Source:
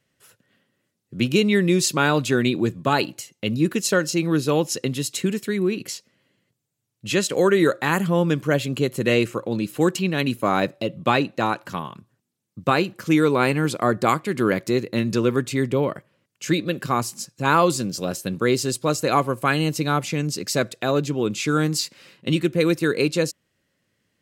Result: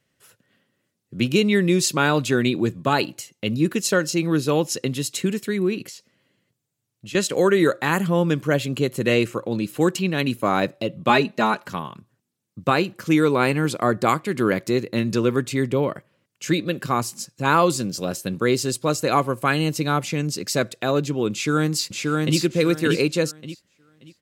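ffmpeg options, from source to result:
ffmpeg -i in.wav -filter_complex "[0:a]asettb=1/sr,asplit=3[link_01][link_02][link_03];[link_01]atrim=end=5.854[link_04];[link_02]atrim=start=5.85:end=7.15,asetpts=PTS-STARTPTS,afade=type=in:duration=0.004:curve=qsin,afade=type=out:start_time=1.296:duration=0.004:curve=qsin,acompressor=threshold=-36dB:ratio=4:attack=3.2:release=140:knee=1:detection=peak[link_05];[link_03]atrim=start=7.146[link_06];[link_04][link_05]acrossfade=duration=0.004:curve1=hsin:curve2=qsin[link_07];[link_07][link_06]acrossfade=duration=0.004:curve1=qsin:curve2=hsin,asettb=1/sr,asplit=3[link_08][link_09][link_10];[link_08]atrim=end=11.094[link_11];[link_09]atrim=start=11.09:end=11.68,asetpts=PTS-STARTPTS,afade=type=in:duration=0.004:curve=qsin,afade=type=out:start_time=0.586:duration=0.004:curve=qsin,aecho=1:1:4.8:0.9,atrim=end_sample=26019[link_12];[link_10]atrim=start=11.676[link_13];[link_11][link_12]acrossfade=duration=0.004:curve1=hsin:curve2=qsin[link_14];[link_14][link_13]acrossfade=duration=0.004:curve1=qsin:curve2=hsin,asplit=2[link_15][link_16];[link_16]afade=type=in:start_time=21.32:duration=0.01,afade=type=out:start_time=22.38:duration=0.01,aecho=0:1:580|1160|1740|2320:0.794328|0.198582|0.0496455|0.0124114[link_17];[link_15][link_17]amix=inputs=2:normalize=0" out.wav

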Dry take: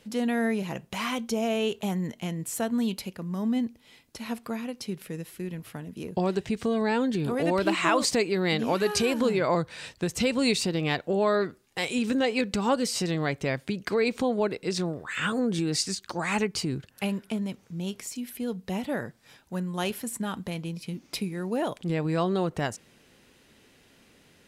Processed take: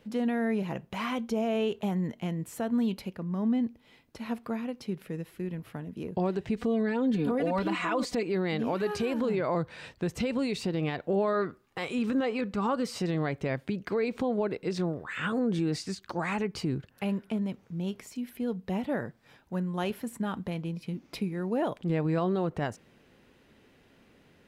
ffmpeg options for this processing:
ffmpeg -i in.wav -filter_complex "[0:a]asettb=1/sr,asplit=3[link_01][link_02][link_03];[link_01]atrim=end=3.184[link_04];[link_02]atrim=start=3.18:end=3.64,asetpts=PTS-STARTPTS,afade=type=in:duration=0.004:curve=qsin,afade=type=out:start_time=0.456:duration=0.004:curve=qsin,highshelf=frequency=8800:gain=-10[link_05];[link_03]atrim=start=3.636[link_06];[link_04][link_05]acrossfade=duration=0.004:curve1=hsin:curve2=qsin[link_07];[link_07][link_06]acrossfade=duration=0.004:curve1=qsin:curve2=hsin,asettb=1/sr,asplit=3[link_08][link_09][link_10];[link_08]atrim=end=6.574[link_11];[link_09]atrim=start=6.57:end=8.23,asetpts=PTS-STARTPTS,afade=type=in:duration=0.004:curve=qsin,afade=type=out:start_time=1.656:duration=0.004:curve=qsin,aecho=1:1:4.1:0.89,atrim=end_sample=73206[link_12];[link_10]atrim=start=8.226[link_13];[link_11][link_12]acrossfade=duration=0.004:curve1=hsin:curve2=qsin[link_14];[link_14][link_13]acrossfade=duration=0.004:curve1=qsin:curve2=hsin,asettb=1/sr,asplit=3[link_15][link_16][link_17];[link_15]atrim=end=11.334[link_18];[link_16]atrim=start=11.33:end=12.96,asetpts=PTS-STARTPTS,afade=type=in:duration=0.004:curve=qsin,afade=type=out:start_time=1.626:duration=0.004:curve=qsin,equalizer=frequency=1200:width_type=o:width=0.42:gain=8[link_19];[link_17]atrim=start=12.956[link_20];[link_18][link_19]acrossfade=duration=0.004:curve1=hsin:curve2=qsin[link_21];[link_21][link_20]acrossfade=duration=0.004:curve1=qsin:curve2=hsin,alimiter=limit=-19.5dB:level=0:latency=1:release=54,equalizer=frequency=8800:width=0.37:gain=-12.5" out.wav

